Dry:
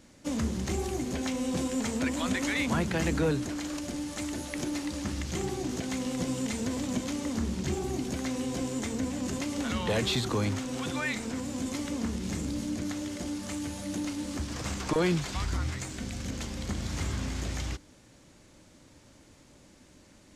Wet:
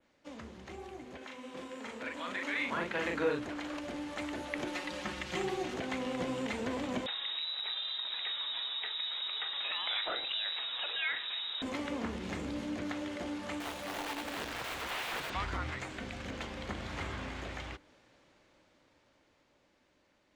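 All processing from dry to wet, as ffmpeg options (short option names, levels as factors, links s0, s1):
-filter_complex "[0:a]asettb=1/sr,asplit=3[s0][s1][s2];[s0]atrim=end=1.174[s3];[s1]atrim=start=1.17:end=3.39,asetpts=PTS-STARTPTS,afade=t=in:d=0.004:c=qsin,afade=t=out:st=2.216:d=0.004:c=qsin,highpass=f=280:p=1,equalizer=f=740:t=o:w=0.31:g=-6,asplit=2[s4][s5];[s5]adelay=41,volume=0.708[s6];[s4][s6]amix=inputs=2:normalize=0,atrim=end_sample=97902[s7];[s2]atrim=start=3.386[s8];[s3][s7]acrossfade=d=0.004:c1=hsin:c2=qsin[s9];[s9][s8]acrossfade=d=0.004:c1=qsin:c2=hsin,asettb=1/sr,asplit=3[s10][s11][s12];[s10]atrim=end=4.674[s13];[s11]atrim=start=4.67:end=5.74,asetpts=PTS-STARTPTS,afade=t=in:d=0.004:c=qsin,afade=t=out:st=1.066:d=0.004:c=qsin,tiltshelf=f=1400:g=-3,aecho=1:1:5.5:0.64,atrim=end_sample=47187[s14];[s12]atrim=start=5.736[s15];[s13][s14]acrossfade=d=0.004:c1=hsin:c2=qsin[s16];[s16][s15]acrossfade=d=0.004:c1=qsin:c2=hsin,asettb=1/sr,asplit=3[s17][s18][s19];[s17]atrim=end=7.064[s20];[s18]atrim=start=7.06:end=11.62,asetpts=PTS-STARTPTS,afade=t=in:d=0.004:c=qsin,afade=t=out:st=4.556:d=0.004:c=qsin,asplit=2[s21][s22];[s22]adelay=43,volume=0.237[s23];[s21][s23]amix=inputs=2:normalize=0,atrim=end_sample=201096,acompressor=threshold=0.0282:ratio=2.5:attack=3.2:release=140:knee=1:detection=peak,lowpass=f=3400:t=q:w=0.5098,lowpass=f=3400:t=q:w=0.6013,lowpass=f=3400:t=q:w=0.9,lowpass=f=3400:t=q:w=2.563,afreqshift=-4000[s24];[s19]atrim=start=11.616[s25];[s20][s24]acrossfade=d=0.004:c1=hsin:c2=qsin[s26];[s26][s25]acrossfade=d=0.004:c1=qsin:c2=hsin,asettb=1/sr,asplit=3[s27][s28][s29];[s27]atrim=end=13.604[s30];[s28]atrim=start=13.6:end=15.3,asetpts=PTS-STARTPTS,afade=t=in:d=0.004:c=qsin,afade=t=out:st=1.696:d=0.004:c=qsin,highshelf=f=4100:g=6.5,bandreject=f=50:t=h:w=6,bandreject=f=100:t=h:w=6,bandreject=f=150:t=h:w=6,bandreject=f=200:t=h:w=6,bandreject=f=250:t=h:w=6,bandreject=f=300:t=h:w=6,bandreject=f=350:t=h:w=6,bandreject=f=400:t=h:w=6,bandreject=f=450:t=h:w=6,bandreject=f=500:t=h:w=6,aeval=exprs='(mod(31.6*val(0)+1,2)-1)/31.6':c=same[s31];[s29]atrim=start=15.296[s32];[s30][s31]acrossfade=d=0.004:c1=hsin:c2=qsin[s33];[s33][s32]acrossfade=d=0.004:c1=qsin:c2=hsin,adynamicequalizer=threshold=0.00224:dfrequency=5200:dqfactor=1.3:tfrequency=5200:tqfactor=1.3:attack=5:release=100:ratio=0.375:range=3:mode=cutabove:tftype=bell,dynaudnorm=f=340:g=17:m=3.98,acrossover=split=390 4300:gain=0.251 1 0.126[s34][s35][s36];[s34][s35][s36]amix=inputs=3:normalize=0,volume=0.355"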